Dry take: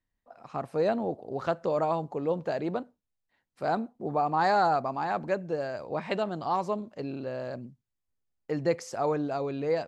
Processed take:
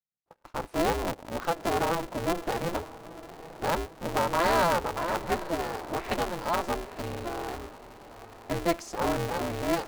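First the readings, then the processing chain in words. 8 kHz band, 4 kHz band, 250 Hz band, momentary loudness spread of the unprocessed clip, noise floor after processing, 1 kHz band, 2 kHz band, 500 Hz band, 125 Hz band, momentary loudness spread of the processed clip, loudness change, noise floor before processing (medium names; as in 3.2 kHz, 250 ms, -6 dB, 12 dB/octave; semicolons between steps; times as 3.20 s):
no reading, +8.0 dB, +0.5 dB, 11 LU, -56 dBFS, 0.0 dB, +4.0 dB, -1.0 dB, +1.5 dB, 18 LU, +0.5 dB, -84 dBFS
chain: gate -47 dBFS, range -24 dB; echo that smears into a reverb 937 ms, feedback 50%, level -15.5 dB; polarity switched at an audio rate 170 Hz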